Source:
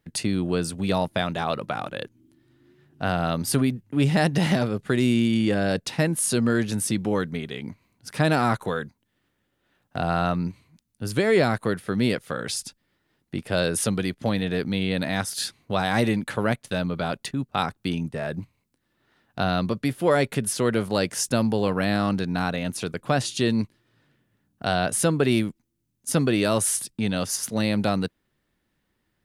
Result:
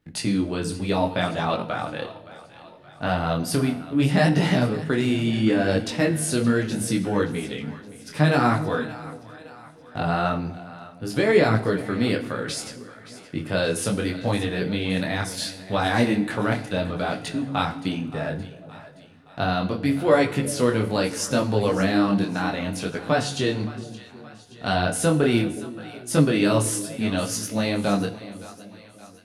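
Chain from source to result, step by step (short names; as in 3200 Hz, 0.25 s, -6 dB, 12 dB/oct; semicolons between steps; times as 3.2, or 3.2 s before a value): high shelf 8100 Hz -7 dB; split-band echo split 630 Hz, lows 0.365 s, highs 0.571 s, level -16 dB; FDN reverb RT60 0.76 s, low-frequency decay 1.25×, high-frequency decay 0.9×, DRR 8.5 dB; detuned doubles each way 24 cents; gain +4.5 dB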